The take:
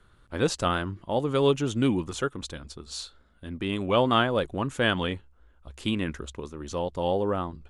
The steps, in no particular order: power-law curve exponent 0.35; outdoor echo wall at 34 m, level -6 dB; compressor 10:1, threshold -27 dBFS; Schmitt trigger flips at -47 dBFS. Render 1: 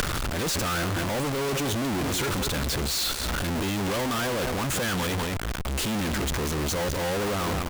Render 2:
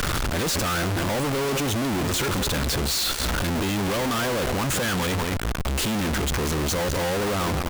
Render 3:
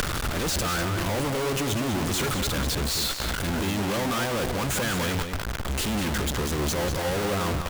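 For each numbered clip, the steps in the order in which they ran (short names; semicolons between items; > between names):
power-law curve > outdoor echo > Schmitt trigger > compressor; compressor > power-law curve > outdoor echo > Schmitt trigger; power-law curve > Schmitt trigger > compressor > outdoor echo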